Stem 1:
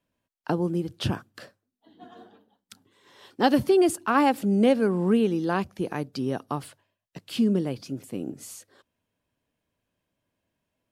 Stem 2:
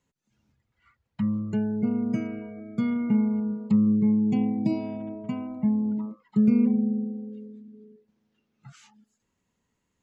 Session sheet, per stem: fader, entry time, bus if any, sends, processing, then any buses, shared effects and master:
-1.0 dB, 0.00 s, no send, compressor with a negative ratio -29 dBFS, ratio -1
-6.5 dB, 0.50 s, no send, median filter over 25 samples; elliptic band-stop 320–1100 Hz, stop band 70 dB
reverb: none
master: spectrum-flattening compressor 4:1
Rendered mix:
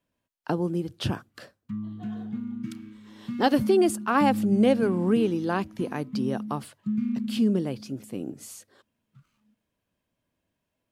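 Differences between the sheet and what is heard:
stem 1: missing compressor with a negative ratio -29 dBFS, ratio -1; master: missing spectrum-flattening compressor 4:1

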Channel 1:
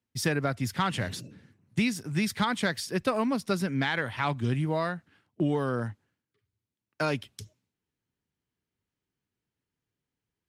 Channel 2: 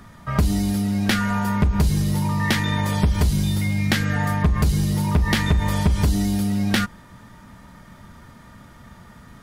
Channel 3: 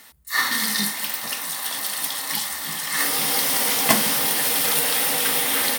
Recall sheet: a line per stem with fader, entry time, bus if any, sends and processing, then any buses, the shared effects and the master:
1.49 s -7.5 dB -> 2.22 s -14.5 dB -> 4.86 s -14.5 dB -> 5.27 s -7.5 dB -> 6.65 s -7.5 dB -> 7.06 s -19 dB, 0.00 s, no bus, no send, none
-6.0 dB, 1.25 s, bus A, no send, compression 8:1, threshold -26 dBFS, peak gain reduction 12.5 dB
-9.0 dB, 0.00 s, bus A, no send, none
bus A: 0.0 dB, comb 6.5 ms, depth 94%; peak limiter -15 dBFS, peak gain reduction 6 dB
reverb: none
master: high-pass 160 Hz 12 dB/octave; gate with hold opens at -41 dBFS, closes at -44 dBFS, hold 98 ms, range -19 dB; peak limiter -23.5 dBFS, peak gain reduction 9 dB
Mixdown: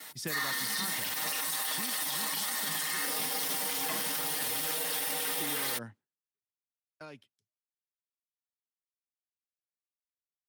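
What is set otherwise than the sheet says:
stem 2: muted; stem 3 -9.0 dB -> -1.0 dB

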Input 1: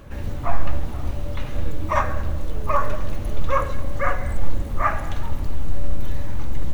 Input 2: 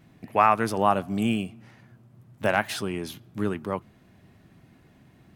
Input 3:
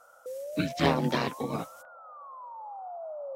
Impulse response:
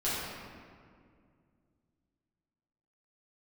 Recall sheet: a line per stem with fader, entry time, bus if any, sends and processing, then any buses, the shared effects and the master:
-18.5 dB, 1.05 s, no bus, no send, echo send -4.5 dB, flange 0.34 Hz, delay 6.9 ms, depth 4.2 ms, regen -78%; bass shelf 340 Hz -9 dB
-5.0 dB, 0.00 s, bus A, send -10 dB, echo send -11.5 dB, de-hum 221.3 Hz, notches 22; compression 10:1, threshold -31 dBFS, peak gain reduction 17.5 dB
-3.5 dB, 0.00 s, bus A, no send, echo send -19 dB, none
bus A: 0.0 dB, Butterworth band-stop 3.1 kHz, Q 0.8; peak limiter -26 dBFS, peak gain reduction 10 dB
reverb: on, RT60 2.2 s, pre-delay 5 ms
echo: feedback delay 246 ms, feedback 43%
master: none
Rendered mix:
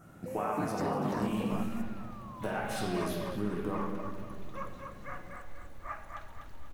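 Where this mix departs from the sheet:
stem 1: missing flange 0.34 Hz, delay 6.9 ms, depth 4.2 ms, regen -78%; stem 2: send -10 dB -> -4 dB

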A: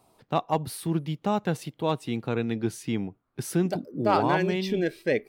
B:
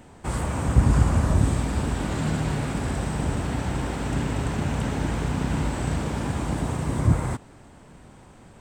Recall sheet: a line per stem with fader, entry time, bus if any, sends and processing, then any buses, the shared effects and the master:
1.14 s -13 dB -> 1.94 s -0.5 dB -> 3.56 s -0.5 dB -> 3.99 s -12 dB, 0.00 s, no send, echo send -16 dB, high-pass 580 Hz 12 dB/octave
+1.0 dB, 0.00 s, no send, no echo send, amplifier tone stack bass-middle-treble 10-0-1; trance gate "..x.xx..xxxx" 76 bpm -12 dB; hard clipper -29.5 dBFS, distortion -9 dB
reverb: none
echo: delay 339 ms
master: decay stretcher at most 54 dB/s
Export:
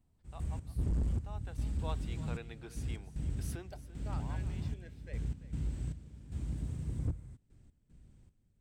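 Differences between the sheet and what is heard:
stem A -13.0 dB -> -25.0 dB; master: missing decay stretcher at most 54 dB/s

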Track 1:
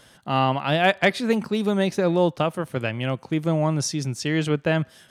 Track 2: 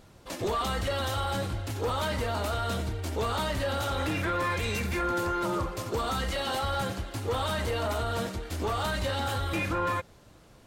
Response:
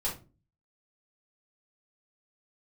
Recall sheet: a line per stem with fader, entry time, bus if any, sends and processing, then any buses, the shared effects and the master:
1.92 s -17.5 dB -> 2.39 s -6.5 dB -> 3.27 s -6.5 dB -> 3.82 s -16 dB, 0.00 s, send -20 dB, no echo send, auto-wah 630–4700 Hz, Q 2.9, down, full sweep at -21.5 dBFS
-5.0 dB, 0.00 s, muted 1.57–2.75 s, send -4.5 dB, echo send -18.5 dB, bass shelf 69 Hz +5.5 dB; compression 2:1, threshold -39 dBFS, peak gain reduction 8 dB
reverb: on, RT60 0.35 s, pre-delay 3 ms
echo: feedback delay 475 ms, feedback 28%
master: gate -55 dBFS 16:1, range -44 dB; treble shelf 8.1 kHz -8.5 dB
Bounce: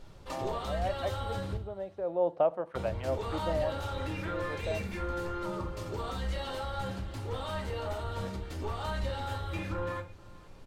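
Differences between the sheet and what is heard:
stem 1 -17.5 dB -> -11.0 dB; master: missing gate -55 dBFS 16:1, range -44 dB

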